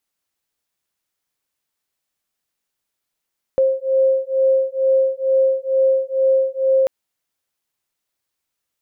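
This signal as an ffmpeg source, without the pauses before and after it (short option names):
-f lavfi -i "aevalsrc='0.141*(sin(2*PI*530*t)+sin(2*PI*532.2*t))':d=3.29:s=44100"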